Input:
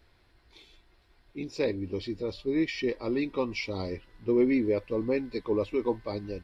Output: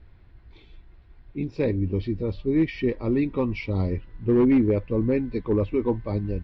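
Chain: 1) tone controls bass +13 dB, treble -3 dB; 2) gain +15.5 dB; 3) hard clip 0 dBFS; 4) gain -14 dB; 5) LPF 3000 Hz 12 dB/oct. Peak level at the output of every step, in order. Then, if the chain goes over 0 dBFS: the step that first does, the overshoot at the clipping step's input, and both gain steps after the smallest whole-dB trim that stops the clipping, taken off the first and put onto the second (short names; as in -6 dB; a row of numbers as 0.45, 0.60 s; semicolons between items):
-10.5, +5.0, 0.0, -14.0, -14.0 dBFS; step 2, 5.0 dB; step 2 +10.5 dB, step 4 -9 dB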